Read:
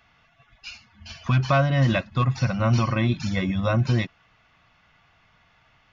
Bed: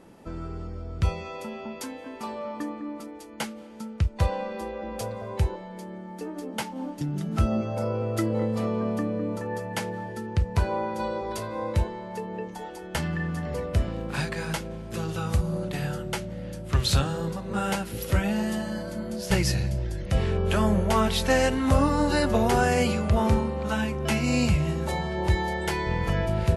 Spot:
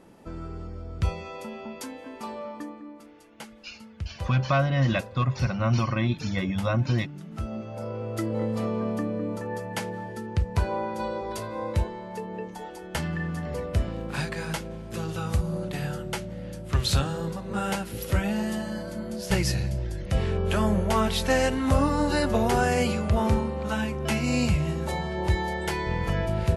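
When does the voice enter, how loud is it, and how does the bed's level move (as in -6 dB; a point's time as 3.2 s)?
3.00 s, -3.0 dB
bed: 2.38 s -1.5 dB
3.1 s -10.5 dB
7.3 s -10.5 dB
8.5 s -1 dB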